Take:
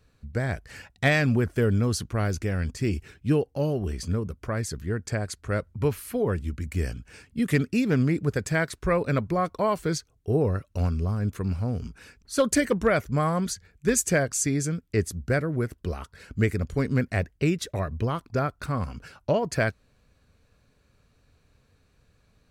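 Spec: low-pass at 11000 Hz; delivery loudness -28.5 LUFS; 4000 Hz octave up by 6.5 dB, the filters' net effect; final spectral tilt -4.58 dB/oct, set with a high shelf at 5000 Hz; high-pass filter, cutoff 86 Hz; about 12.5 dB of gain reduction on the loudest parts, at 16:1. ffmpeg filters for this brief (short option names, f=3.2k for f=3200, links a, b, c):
-af "highpass=86,lowpass=11k,equalizer=f=4k:t=o:g=5.5,highshelf=f=5k:g=5.5,acompressor=threshold=-29dB:ratio=16,volume=6.5dB"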